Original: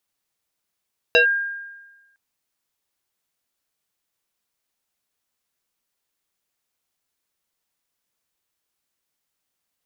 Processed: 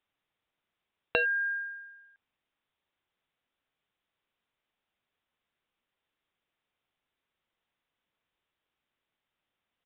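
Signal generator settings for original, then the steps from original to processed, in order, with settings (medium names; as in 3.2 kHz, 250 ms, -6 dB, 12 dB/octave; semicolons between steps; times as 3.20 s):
FM tone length 1.01 s, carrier 1.61 kHz, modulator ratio 0.7, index 1.9, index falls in 0.11 s linear, decay 1.19 s, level -9.5 dB
compression 6:1, threshold -26 dBFS; resampled via 8 kHz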